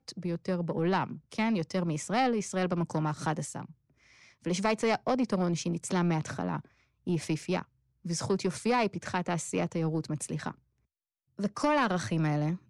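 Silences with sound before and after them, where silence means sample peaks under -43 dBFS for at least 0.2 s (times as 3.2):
3.71–4.44
6.61–7.07
7.62–8.05
10.51–11.39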